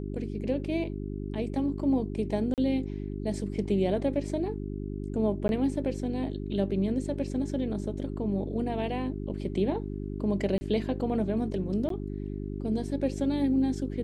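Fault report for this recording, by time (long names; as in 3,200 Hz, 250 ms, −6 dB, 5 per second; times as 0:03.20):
mains hum 50 Hz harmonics 8 −35 dBFS
0:02.54–0:02.58: drop-out 38 ms
0:05.48–0:05.49: drop-out 11 ms
0:10.58–0:10.61: drop-out 30 ms
0:11.89–0:11.90: drop-out 13 ms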